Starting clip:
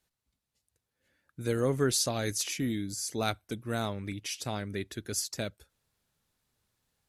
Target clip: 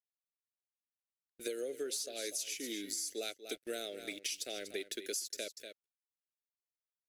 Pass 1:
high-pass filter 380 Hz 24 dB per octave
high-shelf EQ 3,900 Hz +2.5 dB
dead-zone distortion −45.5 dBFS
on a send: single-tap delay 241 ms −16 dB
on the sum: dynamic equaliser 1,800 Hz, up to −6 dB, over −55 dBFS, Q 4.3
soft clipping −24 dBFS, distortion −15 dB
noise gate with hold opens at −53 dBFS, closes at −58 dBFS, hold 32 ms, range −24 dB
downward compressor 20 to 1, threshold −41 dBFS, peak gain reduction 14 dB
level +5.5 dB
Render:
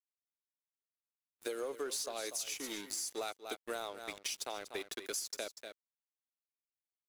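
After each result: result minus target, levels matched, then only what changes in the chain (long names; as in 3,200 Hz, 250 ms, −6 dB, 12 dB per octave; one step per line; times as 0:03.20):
1,000 Hz band +10.5 dB; dead-zone distortion: distortion +10 dB; soft clipping: distortion +10 dB
add after dynamic equaliser: Butterworth band-reject 1,000 Hz, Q 0.82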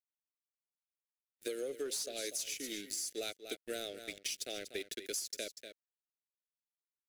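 dead-zone distortion: distortion +10 dB; soft clipping: distortion +10 dB
change: dead-zone distortion −56.5 dBFS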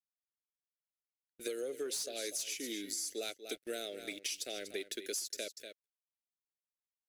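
soft clipping: distortion +10 dB
change: soft clipping −17 dBFS, distortion −25 dB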